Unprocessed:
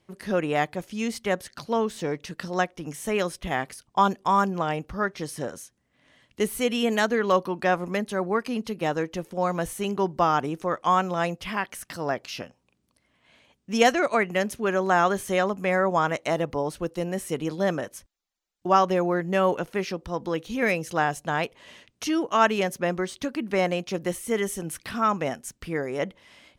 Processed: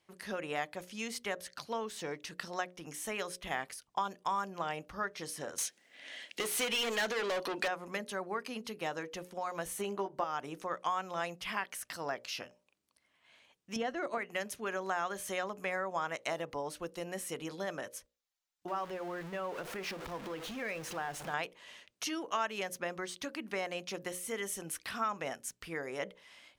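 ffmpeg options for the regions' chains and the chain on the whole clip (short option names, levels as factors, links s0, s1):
-filter_complex "[0:a]asettb=1/sr,asplit=3[s0][s1][s2];[s0]atrim=end=5.584[s3];[s1]atrim=start=5.58:end=7.68,asetpts=PTS-STARTPTS,afade=t=in:d=0.004:c=qsin,afade=t=out:st=2.096:d=0.004:c=qsin,highpass=180,equalizer=f=1100:w=1.7:g=-14,asplit=2[s4][s5];[s5]highpass=f=720:p=1,volume=25.1,asoftclip=type=tanh:threshold=0.224[s6];[s4][s6]amix=inputs=2:normalize=0,lowpass=f=3500:p=1,volume=0.501[s7];[s2]atrim=start=7.676[s8];[s3][s7]acrossfade=d=0.004:c1=hsin:c2=qsin[s9];[s9][s8]acrossfade=d=0.004:c1=qsin:c2=hsin,asettb=1/sr,asplit=3[s10][s11][s12];[s10]atrim=end=9.784[s13];[s11]atrim=start=9.78:end=10.24,asetpts=PTS-STARTPTS,afade=t=in:d=0.004:c=qsin,afade=t=out:st=0.456:d=0.004:c=qsin,equalizer=f=590:t=o:w=2.7:g=7.5,bandreject=f=5200:w=15,asplit=2[s14][s15];[s15]adelay=15,volume=0.708[s16];[s14][s16]amix=inputs=2:normalize=0,atrim=end_sample=20286[s17];[s12]atrim=start=10.236[s18];[s13][s17]acrossfade=d=0.004:c1=hsin:c2=qsin[s19];[s19][s18]acrossfade=d=0.004:c1=qsin:c2=hsin,asettb=1/sr,asplit=3[s20][s21][s22];[s20]atrim=end=13.764[s23];[s21]atrim=start=13.76:end=14.18,asetpts=PTS-STARTPTS,afade=t=in:d=0.004:c=qsin,afade=t=out:st=0.416:d=0.004:c=qsin,bandreject=f=2400:w=7.2,acrossover=split=3900[s24][s25];[s25]acompressor=threshold=0.00398:ratio=4:attack=1:release=60[s26];[s24][s26]amix=inputs=2:normalize=0,lowshelf=f=460:g=12[s27];[s22]atrim=start=14.176[s28];[s23][s27]acrossfade=d=0.004:c1=hsin:c2=qsin[s29];[s29][s28]acrossfade=d=0.004:c1=qsin:c2=hsin,asettb=1/sr,asplit=3[s30][s31][s32];[s30]atrim=end=18.684[s33];[s31]atrim=start=18.68:end=21.34,asetpts=PTS-STARTPTS,afade=t=in:d=0.004:c=qsin,afade=t=out:st=2.656:d=0.004:c=qsin,aeval=exprs='val(0)+0.5*0.0376*sgn(val(0))':c=same,highshelf=f=3700:g=-11,acompressor=threshold=0.0355:ratio=2.5:attack=3.2:release=140:knee=1:detection=peak[s34];[s32]atrim=start=21.336[s35];[s33][s34]acrossfade=d=0.004:c1=hsin:c2=qsin[s36];[s36][s35]acrossfade=d=0.004:c1=qsin:c2=hsin,acompressor=threshold=0.0631:ratio=6,lowshelf=f=450:g=-11.5,bandreject=f=60:t=h:w=6,bandreject=f=120:t=h:w=6,bandreject=f=180:t=h:w=6,bandreject=f=240:t=h:w=6,bandreject=f=300:t=h:w=6,bandreject=f=360:t=h:w=6,bandreject=f=420:t=h:w=6,bandreject=f=480:t=h:w=6,bandreject=f=540:t=h:w=6,bandreject=f=600:t=h:w=6,volume=0.668"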